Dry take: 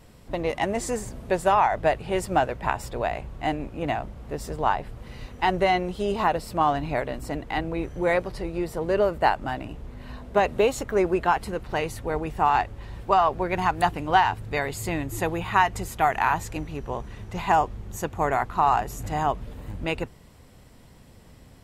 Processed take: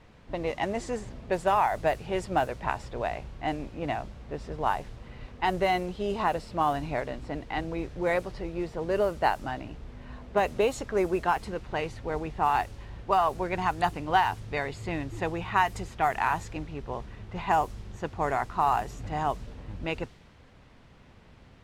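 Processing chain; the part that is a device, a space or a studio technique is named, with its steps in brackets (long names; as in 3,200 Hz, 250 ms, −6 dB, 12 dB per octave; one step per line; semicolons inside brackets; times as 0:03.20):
cassette deck with a dynamic noise filter (white noise bed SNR 24 dB; low-pass that shuts in the quiet parts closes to 2,200 Hz, open at −16.5 dBFS)
level −4 dB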